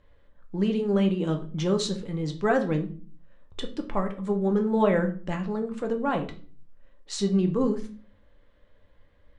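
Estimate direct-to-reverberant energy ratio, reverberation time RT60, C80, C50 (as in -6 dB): 4.0 dB, 0.40 s, 17.0 dB, 12.5 dB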